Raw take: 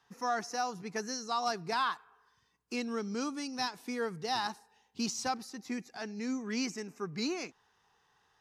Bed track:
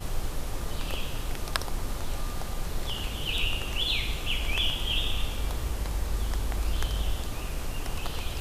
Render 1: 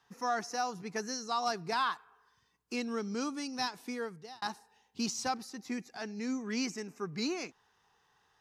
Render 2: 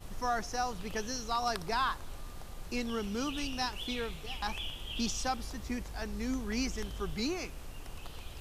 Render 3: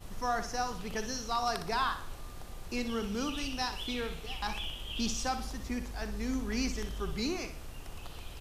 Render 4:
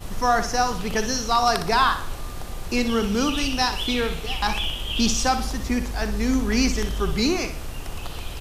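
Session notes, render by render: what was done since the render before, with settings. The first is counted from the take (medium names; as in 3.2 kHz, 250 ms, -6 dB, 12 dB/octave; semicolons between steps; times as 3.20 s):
3.83–4.42 s: fade out
add bed track -12.5 dB
feedback delay 61 ms, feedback 41%, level -10 dB
trim +12 dB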